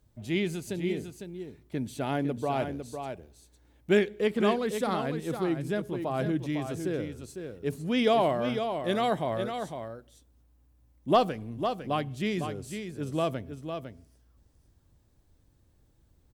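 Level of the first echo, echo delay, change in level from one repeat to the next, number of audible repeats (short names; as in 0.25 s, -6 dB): -7.5 dB, 0.504 s, no steady repeat, 1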